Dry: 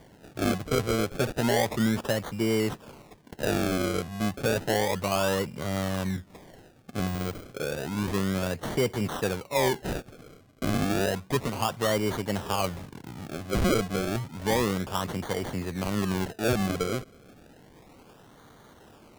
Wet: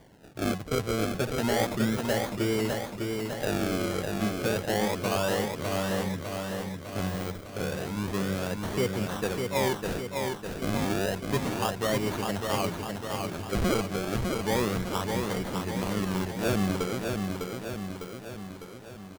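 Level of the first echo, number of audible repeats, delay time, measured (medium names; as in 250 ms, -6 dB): -4.5 dB, 5, 603 ms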